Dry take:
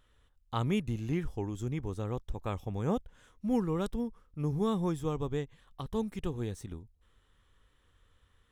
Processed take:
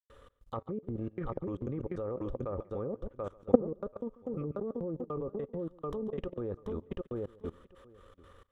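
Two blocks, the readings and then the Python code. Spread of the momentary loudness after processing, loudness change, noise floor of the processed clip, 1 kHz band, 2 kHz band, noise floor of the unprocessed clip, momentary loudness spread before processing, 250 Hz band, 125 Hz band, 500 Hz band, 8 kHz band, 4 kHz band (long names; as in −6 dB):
8 LU, −2.5 dB, −65 dBFS, −4.0 dB, can't be measured, −69 dBFS, 9 LU, −3.0 dB, −6.5 dB, +2.0 dB, below −20 dB, below −10 dB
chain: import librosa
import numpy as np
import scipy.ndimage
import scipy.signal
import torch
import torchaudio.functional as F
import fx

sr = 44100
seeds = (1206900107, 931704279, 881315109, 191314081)

p1 = np.minimum(x, 2.0 * 10.0 ** (-26.0 / 20.0) - x)
p2 = fx.peak_eq(p1, sr, hz=1200.0, db=4.0, octaves=0.9)
p3 = fx.step_gate(p2, sr, bpm=153, pattern='.xx.xx.x', floor_db=-60.0, edge_ms=4.5)
p4 = fx.env_lowpass_down(p3, sr, base_hz=460.0, full_db=-27.5)
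p5 = fx.comb_fb(p4, sr, f0_hz=87.0, decay_s=0.3, harmonics='odd', damping=0.0, mix_pct=40)
p6 = fx.small_body(p5, sr, hz=(540.0, 1200.0), ring_ms=50, db=13)
p7 = fx.transient(p6, sr, attack_db=1, sustain_db=-12)
p8 = fx.echo_feedback(p7, sr, ms=735, feedback_pct=17, wet_db=-12.5)
p9 = fx.over_compress(p8, sr, threshold_db=-41.0, ratio=-0.5)
p10 = p8 + F.gain(torch.from_numpy(p9), -2.0).numpy()
p11 = fx.peak_eq(p10, sr, hz=400.0, db=9.0, octaves=1.8)
p12 = p11 + 10.0 ** (-20.0 / 20.0) * np.pad(p11, (int(140 * sr / 1000.0), 0))[:len(p11)]
p13 = fx.level_steps(p12, sr, step_db=21)
y = F.gain(torch.from_numpy(p13), 6.5).numpy()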